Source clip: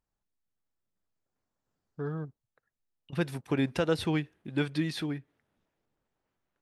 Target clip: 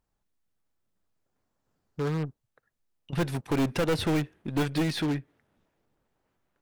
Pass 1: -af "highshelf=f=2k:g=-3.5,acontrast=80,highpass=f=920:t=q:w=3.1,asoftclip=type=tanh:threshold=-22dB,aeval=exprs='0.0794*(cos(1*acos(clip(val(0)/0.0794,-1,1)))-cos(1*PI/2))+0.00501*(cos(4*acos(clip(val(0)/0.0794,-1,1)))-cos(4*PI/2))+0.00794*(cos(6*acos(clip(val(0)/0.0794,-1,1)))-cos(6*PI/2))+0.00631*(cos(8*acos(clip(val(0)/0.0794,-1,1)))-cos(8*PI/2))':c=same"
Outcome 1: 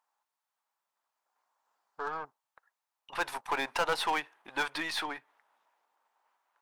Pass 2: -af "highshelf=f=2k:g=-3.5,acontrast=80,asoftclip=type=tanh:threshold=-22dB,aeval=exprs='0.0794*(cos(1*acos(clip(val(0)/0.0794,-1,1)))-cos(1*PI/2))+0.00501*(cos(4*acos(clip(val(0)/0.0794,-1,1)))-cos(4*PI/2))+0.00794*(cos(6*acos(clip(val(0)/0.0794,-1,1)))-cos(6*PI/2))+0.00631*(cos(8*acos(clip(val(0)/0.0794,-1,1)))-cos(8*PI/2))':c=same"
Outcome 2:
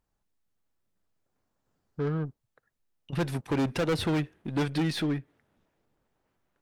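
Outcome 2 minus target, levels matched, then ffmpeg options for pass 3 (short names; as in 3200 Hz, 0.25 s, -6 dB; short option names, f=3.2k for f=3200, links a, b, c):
soft clip: distortion +8 dB
-af "highshelf=f=2k:g=-3.5,acontrast=80,asoftclip=type=tanh:threshold=-15dB,aeval=exprs='0.0794*(cos(1*acos(clip(val(0)/0.0794,-1,1)))-cos(1*PI/2))+0.00501*(cos(4*acos(clip(val(0)/0.0794,-1,1)))-cos(4*PI/2))+0.00794*(cos(6*acos(clip(val(0)/0.0794,-1,1)))-cos(6*PI/2))+0.00631*(cos(8*acos(clip(val(0)/0.0794,-1,1)))-cos(8*PI/2))':c=same"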